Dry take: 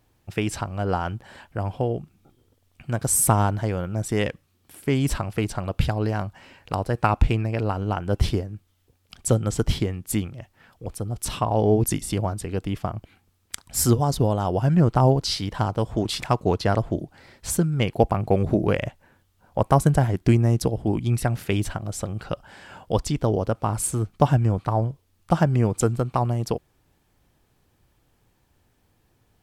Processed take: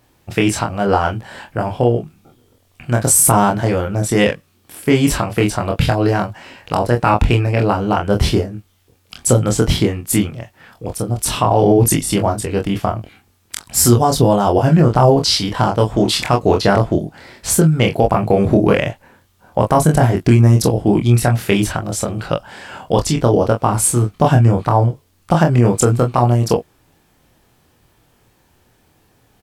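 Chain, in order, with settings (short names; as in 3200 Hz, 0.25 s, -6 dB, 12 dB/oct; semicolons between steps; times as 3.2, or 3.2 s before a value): low shelf 97 Hz -8 dB; on a send: early reflections 25 ms -3 dB, 44 ms -11.5 dB; on the sum: maximiser +10 dB; gain -1 dB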